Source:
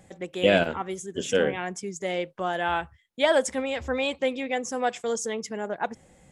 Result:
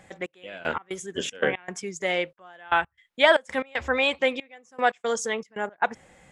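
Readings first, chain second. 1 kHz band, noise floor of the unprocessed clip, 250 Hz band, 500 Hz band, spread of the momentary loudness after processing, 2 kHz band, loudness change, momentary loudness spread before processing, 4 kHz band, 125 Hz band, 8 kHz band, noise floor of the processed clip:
+2.0 dB, -58 dBFS, -4.0 dB, -1.0 dB, 15 LU, +4.5 dB, +1.0 dB, 11 LU, +2.0 dB, -6.5 dB, -2.5 dB, -73 dBFS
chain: peaking EQ 1.7 kHz +11 dB 2.8 oct; trance gate "xx...x.xxx.x.xxx" 116 bpm -24 dB; trim -2.5 dB

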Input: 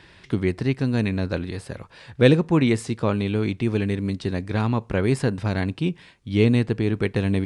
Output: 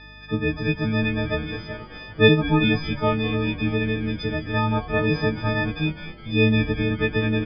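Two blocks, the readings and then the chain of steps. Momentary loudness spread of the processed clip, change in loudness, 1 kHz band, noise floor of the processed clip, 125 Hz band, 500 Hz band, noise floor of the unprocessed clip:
9 LU, +0.5 dB, +4.0 dB, -42 dBFS, -1.0 dB, 0.0 dB, -52 dBFS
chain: partials quantised in pitch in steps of 6 st; resampled via 11.025 kHz; hum 50 Hz, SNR 25 dB; distance through air 120 m; frequency-shifting echo 206 ms, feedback 56%, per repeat -150 Hz, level -14 dB; trim -1 dB

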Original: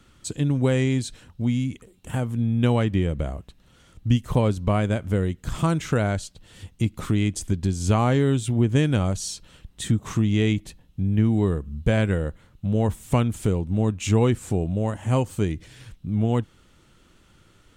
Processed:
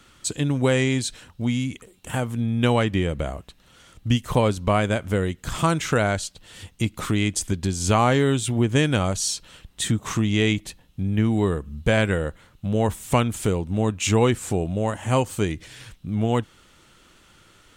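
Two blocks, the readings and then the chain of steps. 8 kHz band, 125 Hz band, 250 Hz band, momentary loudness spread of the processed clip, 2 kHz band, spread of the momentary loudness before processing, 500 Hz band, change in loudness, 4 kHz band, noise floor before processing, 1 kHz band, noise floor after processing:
+6.5 dB, -2.0 dB, 0.0 dB, 11 LU, +6.0 dB, 11 LU, +2.5 dB, +0.5 dB, +6.5 dB, -57 dBFS, +5.0 dB, -56 dBFS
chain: bass shelf 410 Hz -9 dB; trim +6.5 dB

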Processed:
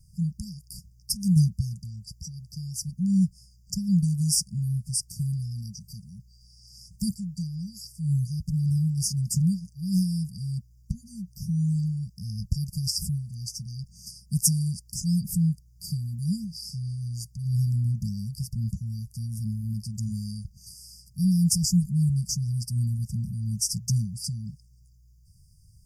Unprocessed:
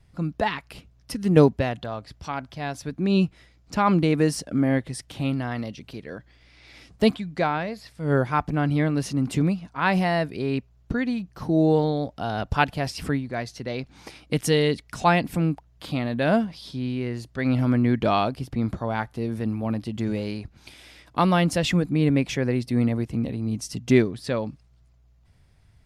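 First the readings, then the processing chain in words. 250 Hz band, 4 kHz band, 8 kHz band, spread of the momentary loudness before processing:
-5.0 dB, -1.5 dB, +10.0 dB, 12 LU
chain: brick-wall FIR band-stop 210–4600 Hz; treble shelf 5.1 kHz +12 dB; trim +1.5 dB

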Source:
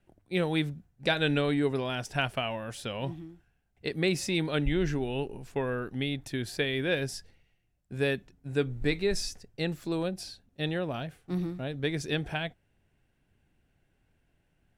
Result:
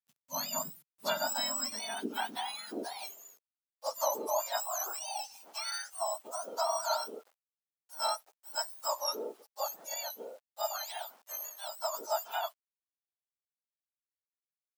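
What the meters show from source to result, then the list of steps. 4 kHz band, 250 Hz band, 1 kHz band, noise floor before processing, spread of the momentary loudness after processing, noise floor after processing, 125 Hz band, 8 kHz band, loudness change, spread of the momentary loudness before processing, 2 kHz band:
-2.5 dB, -17.5 dB, +4.5 dB, -73 dBFS, 9 LU, under -85 dBFS, under -30 dB, +7.5 dB, -4.5 dB, 9 LU, -10.0 dB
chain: spectrum inverted on a logarithmic axis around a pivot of 1.5 kHz; word length cut 10-bit, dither none; high-pass sweep 130 Hz -> 700 Hz, 0.40–4.37 s; trim -3 dB

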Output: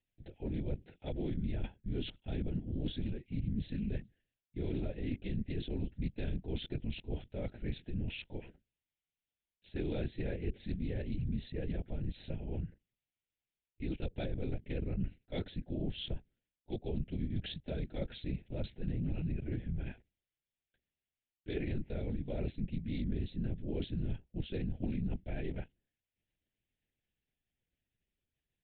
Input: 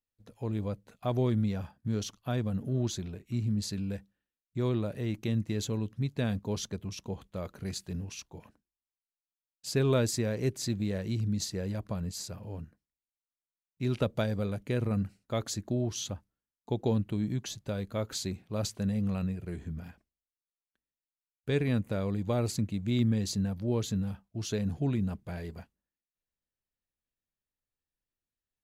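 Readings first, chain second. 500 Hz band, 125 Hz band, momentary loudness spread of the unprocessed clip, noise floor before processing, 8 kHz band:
-8.5 dB, -7.0 dB, 11 LU, under -85 dBFS, under -40 dB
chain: reverse; compression 10:1, threshold -39 dBFS, peak gain reduction 16.5 dB; reverse; LPC vocoder at 8 kHz whisper; static phaser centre 2.7 kHz, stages 4; loudspeaker Doppler distortion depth 0.19 ms; trim +6.5 dB

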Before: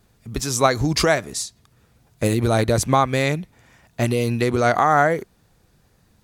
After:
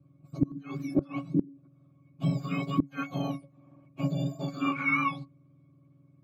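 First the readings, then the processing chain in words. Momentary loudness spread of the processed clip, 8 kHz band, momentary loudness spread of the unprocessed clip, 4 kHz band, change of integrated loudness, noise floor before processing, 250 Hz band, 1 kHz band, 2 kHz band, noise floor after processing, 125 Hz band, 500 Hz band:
12 LU, under -30 dB, 12 LU, -18.0 dB, -11.0 dB, -60 dBFS, -5.5 dB, -15.5 dB, -9.5 dB, -62 dBFS, -9.5 dB, -20.0 dB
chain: spectrum inverted on a logarithmic axis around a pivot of 1.3 kHz; pitch-class resonator C#, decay 0.16 s; inverted gate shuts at -21 dBFS, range -24 dB; trim +8 dB

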